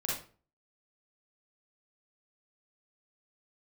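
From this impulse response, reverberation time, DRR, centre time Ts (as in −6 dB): 0.40 s, −5.0 dB, 49 ms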